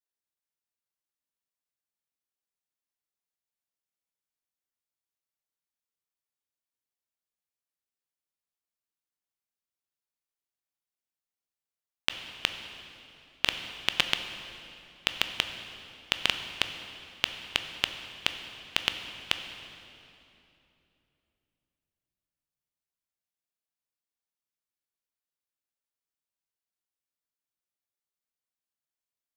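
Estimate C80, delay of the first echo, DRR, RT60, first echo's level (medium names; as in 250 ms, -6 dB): 9.0 dB, no echo, 7.0 dB, 3.0 s, no echo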